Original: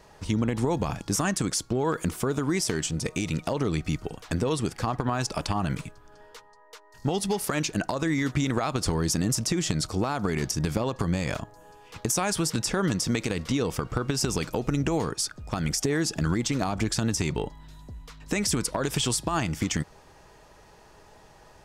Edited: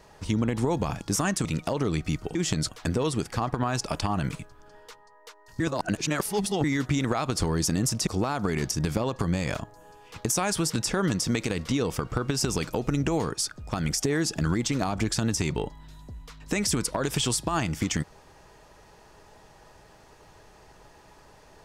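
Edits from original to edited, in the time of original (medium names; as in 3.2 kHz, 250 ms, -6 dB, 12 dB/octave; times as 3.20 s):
1.45–3.25 s: delete
7.06–8.10 s: reverse
9.53–9.87 s: move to 4.15 s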